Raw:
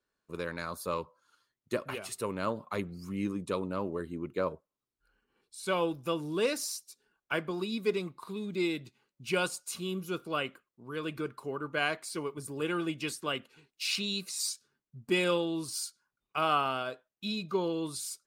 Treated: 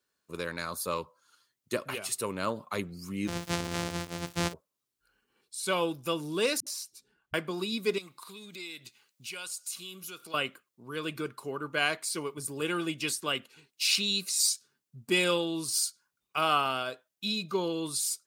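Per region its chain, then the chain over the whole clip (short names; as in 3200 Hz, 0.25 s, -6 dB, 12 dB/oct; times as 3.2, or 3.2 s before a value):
3.27–4.52 sample sorter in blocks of 256 samples + LPF 8000 Hz + crackle 330/s -44 dBFS
6.6–7.34 tone controls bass +11 dB, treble -10 dB + dispersion highs, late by 66 ms, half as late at 300 Hz
7.98–10.34 tilt shelf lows -6.5 dB, about 800 Hz + compressor 2.5:1, threshold -48 dBFS
whole clip: HPF 60 Hz; high shelf 2800 Hz +9 dB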